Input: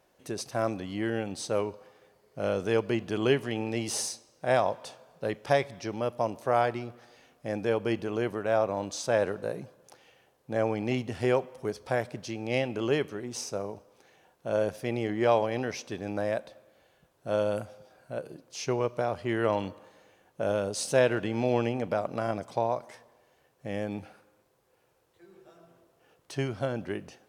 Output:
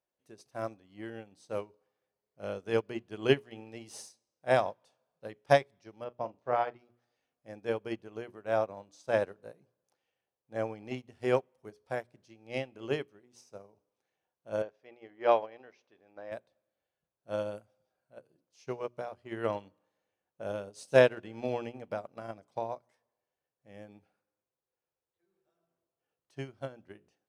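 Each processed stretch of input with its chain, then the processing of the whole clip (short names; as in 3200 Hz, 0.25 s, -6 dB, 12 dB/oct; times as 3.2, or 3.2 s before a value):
6.04–6.79 air absorption 170 m + doubler 41 ms -10 dB
14.62–16.32 LPF 6500 Hz 24 dB/oct + tone controls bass -14 dB, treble -10 dB
whole clip: notches 60/120/180/240/300/360/420 Hz; upward expander 2.5:1, over -38 dBFS; gain +3.5 dB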